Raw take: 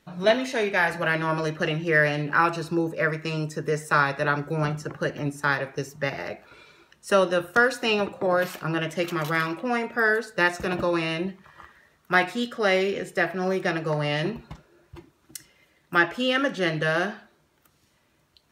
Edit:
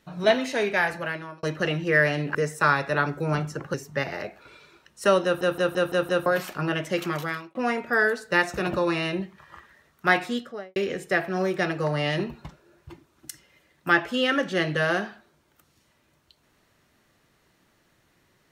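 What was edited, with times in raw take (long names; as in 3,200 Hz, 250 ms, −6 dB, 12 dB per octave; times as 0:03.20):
0:00.72–0:01.43: fade out
0:02.35–0:03.65: remove
0:05.04–0:05.80: remove
0:07.30: stutter in place 0.17 s, 6 plays
0:09.13–0:09.61: fade out
0:12.31–0:12.82: fade out and dull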